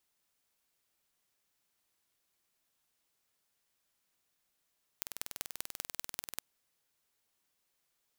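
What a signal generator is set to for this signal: pulse train 20.5/s, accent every 4, -8 dBFS 1.39 s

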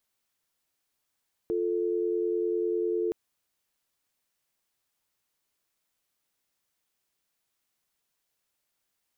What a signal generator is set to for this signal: call progress tone dial tone, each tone -28 dBFS 1.62 s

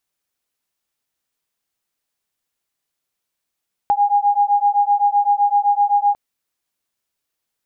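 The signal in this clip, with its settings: beating tones 813 Hz, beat 7.8 Hz, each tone -16 dBFS 2.25 s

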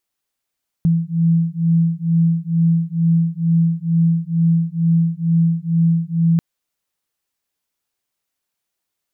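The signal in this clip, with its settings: beating tones 165 Hz, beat 2.2 Hz, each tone -16.5 dBFS 5.54 s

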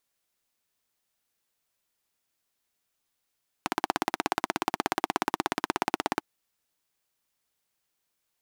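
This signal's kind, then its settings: single-cylinder engine model, steady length 2.55 s, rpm 2000, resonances 330/800 Hz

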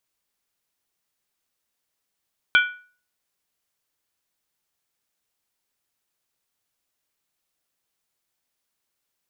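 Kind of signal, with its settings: skin hit, lowest mode 1470 Hz, modes 4, decay 0.41 s, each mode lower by 4.5 dB, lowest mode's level -11 dB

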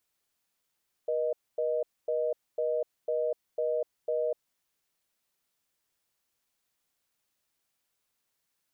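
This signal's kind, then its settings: call progress tone reorder tone, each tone -29 dBFS 3.29 s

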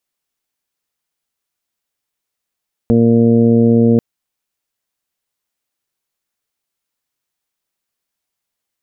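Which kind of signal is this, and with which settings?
steady additive tone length 1.09 s, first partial 116 Hz, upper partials 5.5/-5/0.5/-12/-18.5 dB, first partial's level -15 dB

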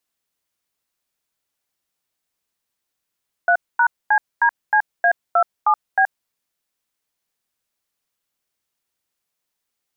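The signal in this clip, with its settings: DTMF "3#CDCA27B", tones 76 ms, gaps 0.236 s, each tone -14.5 dBFS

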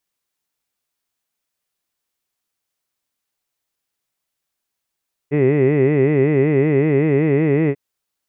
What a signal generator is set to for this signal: formant-synthesis vowel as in hid, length 2.44 s, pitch 138 Hz, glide +1.5 st, vibrato depth 1.45 st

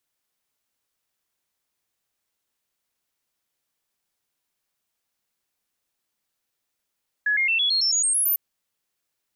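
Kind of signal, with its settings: stepped sine 1690 Hz up, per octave 3, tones 10, 0.11 s, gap 0.00 s -18.5 dBFS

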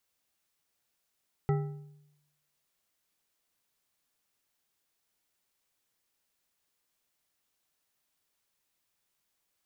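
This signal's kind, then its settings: metal hit bar, lowest mode 147 Hz, decay 0.89 s, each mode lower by 5.5 dB, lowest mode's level -23 dB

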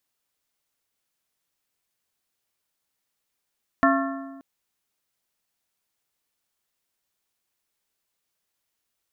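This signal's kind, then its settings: metal hit plate, length 0.58 s, lowest mode 272 Hz, modes 5, decay 1.43 s, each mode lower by 1 dB, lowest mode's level -18 dB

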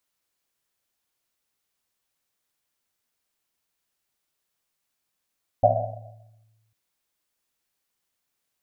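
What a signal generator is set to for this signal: Risset drum, pitch 110 Hz, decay 1.48 s, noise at 660 Hz, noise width 180 Hz, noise 70%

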